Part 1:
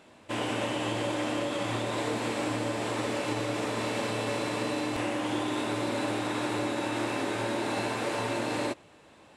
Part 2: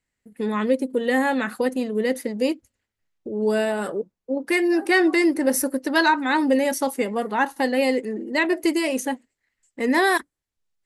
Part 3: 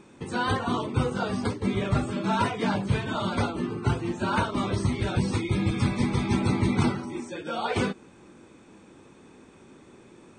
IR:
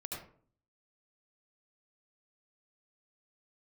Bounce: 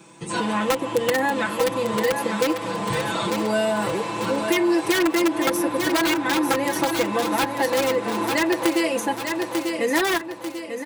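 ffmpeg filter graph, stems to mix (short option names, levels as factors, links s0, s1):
-filter_complex "[0:a]equalizer=f=1000:t=o:w=0.45:g=10.5,volume=0.631,asplit=2[s0][s1];[s1]volume=0.531[s2];[1:a]aeval=exprs='(mod(3.98*val(0)+1,2)-1)/3.98':c=same,volume=1.12,asplit=3[s3][s4][s5];[s4]volume=0.335[s6];[2:a]crystalizer=i=3:c=0,volume=0.841[s7];[s5]apad=whole_len=458070[s8];[s7][s8]sidechaincompress=threshold=0.0178:ratio=8:attack=16:release=390[s9];[s2][s6]amix=inputs=2:normalize=0,aecho=0:1:893|1786|2679|3572|4465|5358:1|0.44|0.194|0.0852|0.0375|0.0165[s10];[s0][s3][s9][s10]amix=inputs=4:normalize=0,highpass=60,aecho=1:1:6:0.86,acrossover=split=380|3000[s11][s12][s13];[s11]acompressor=threshold=0.0501:ratio=4[s14];[s12]acompressor=threshold=0.0891:ratio=4[s15];[s13]acompressor=threshold=0.0316:ratio=4[s16];[s14][s15][s16]amix=inputs=3:normalize=0"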